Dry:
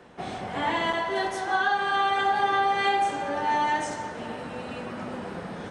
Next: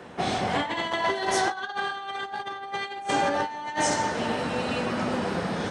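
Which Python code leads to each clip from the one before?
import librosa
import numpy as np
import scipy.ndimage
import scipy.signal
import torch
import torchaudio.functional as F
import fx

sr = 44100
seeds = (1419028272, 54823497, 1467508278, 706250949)

y = fx.over_compress(x, sr, threshold_db=-30.0, ratio=-0.5)
y = scipy.signal.sosfilt(scipy.signal.butter(2, 50.0, 'highpass', fs=sr, output='sos'), y)
y = fx.dynamic_eq(y, sr, hz=5100.0, q=1.0, threshold_db=-52.0, ratio=4.0, max_db=6)
y = y * 10.0 ** (3.0 / 20.0)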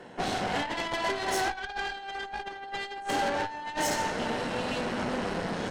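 y = fx.notch_comb(x, sr, f0_hz=1200.0)
y = fx.cheby_harmonics(y, sr, harmonics=(8,), levels_db=(-17,), full_scale_db=-12.5)
y = 10.0 ** (-15.5 / 20.0) * np.tanh(y / 10.0 ** (-15.5 / 20.0))
y = y * 10.0 ** (-3.0 / 20.0)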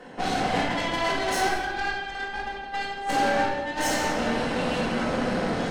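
y = x + 10.0 ** (-16.0 / 20.0) * np.pad(x, (int(174 * sr / 1000.0), 0))[:len(x)]
y = fx.room_shoebox(y, sr, seeds[0], volume_m3=810.0, walls='mixed', distance_m=2.0)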